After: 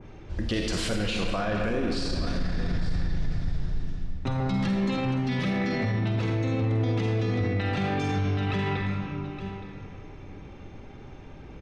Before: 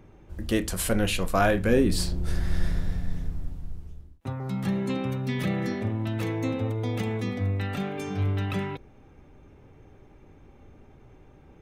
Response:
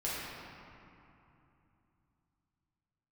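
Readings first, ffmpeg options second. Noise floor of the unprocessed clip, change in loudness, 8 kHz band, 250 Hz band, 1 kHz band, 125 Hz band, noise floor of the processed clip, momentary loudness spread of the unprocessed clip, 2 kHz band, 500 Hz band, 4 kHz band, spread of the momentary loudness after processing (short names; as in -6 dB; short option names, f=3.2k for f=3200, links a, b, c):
-53 dBFS, 0.0 dB, n/a, +0.5 dB, 0.0 dB, +2.0 dB, -44 dBFS, 16 LU, +0.5 dB, -2.0 dB, +2.0 dB, 18 LU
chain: -filter_complex "[0:a]lowpass=f=5k:w=0.5412,lowpass=f=5k:w=1.3066,aemphasis=mode=production:type=75fm,aecho=1:1:868:0.106,acompressor=threshold=-26dB:ratio=6,asplit=2[a][b];[1:a]atrim=start_sample=2205,highshelf=f=5.2k:g=9.5,adelay=47[c];[b][c]afir=irnorm=-1:irlink=0,volume=-9dB[d];[a][d]amix=inputs=2:normalize=0,alimiter=level_in=1.5dB:limit=-24dB:level=0:latency=1:release=23,volume=-1.5dB,adynamicequalizer=threshold=0.00251:dfrequency=2200:dqfactor=0.7:tfrequency=2200:tqfactor=0.7:attack=5:release=100:ratio=0.375:range=2:mode=cutabove:tftype=highshelf,volume=6.5dB"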